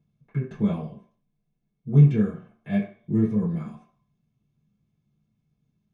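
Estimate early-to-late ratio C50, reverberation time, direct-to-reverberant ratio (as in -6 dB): 7.0 dB, 0.50 s, -10.0 dB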